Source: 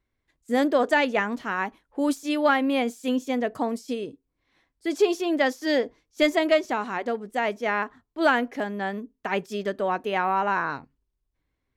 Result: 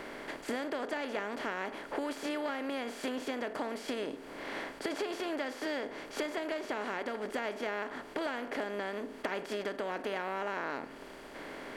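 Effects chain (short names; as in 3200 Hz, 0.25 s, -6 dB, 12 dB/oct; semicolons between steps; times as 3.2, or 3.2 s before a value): per-bin compression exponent 0.4; compressor 6:1, threshold -28 dBFS, peak gain reduction 16 dB; gain -5.5 dB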